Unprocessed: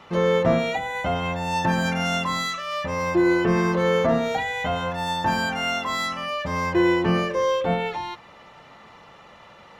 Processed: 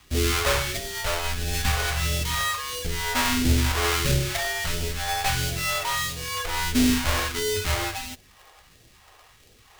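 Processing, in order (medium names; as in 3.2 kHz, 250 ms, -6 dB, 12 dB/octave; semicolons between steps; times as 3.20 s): square wave that keeps the level; phase shifter stages 2, 1.5 Hz, lowest notch 280–1100 Hz; frequency shift -100 Hz; in parallel at -3 dB: bit crusher 6-bit; on the sum: trim -7 dB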